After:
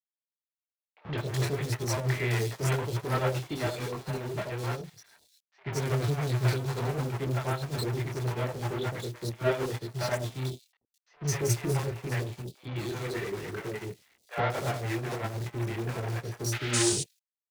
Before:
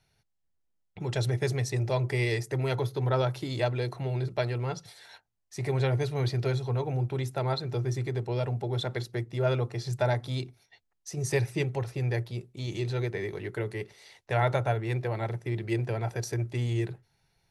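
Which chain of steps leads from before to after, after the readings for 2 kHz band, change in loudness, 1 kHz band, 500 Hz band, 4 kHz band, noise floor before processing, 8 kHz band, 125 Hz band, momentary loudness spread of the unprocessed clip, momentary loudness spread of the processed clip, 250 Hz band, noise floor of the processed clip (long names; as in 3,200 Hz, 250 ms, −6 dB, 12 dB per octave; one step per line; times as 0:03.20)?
+0.5 dB, −1.0 dB, −0.5 dB, −2.0 dB, +2.0 dB, −76 dBFS, +9.0 dB, −2.0 dB, 8 LU, 9 LU, 0.0 dB, below −85 dBFS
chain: high-shelf EQ 6,700 Hz −7 dB
multi-voice chorus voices 4, 0.53 Hz, delay 24 ms, depth 4.3 ms
in parallel at −12 dB: fuzz pedal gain 48 dB, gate −56 dBFS
on the sum: bit reduction 7 bits
sound drawn into the spectrogram noise, 0:16.52–0:16.83, 1,200–9,800 Hz −24 dBFS
low-shelf EQ 63 Hz −8 dB
three-band delay without the direct sound mids, lows, highs 80/210 ms, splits 600/3,500 Hz
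expander for the loud parts 2.5 to 1, over −35 dBFS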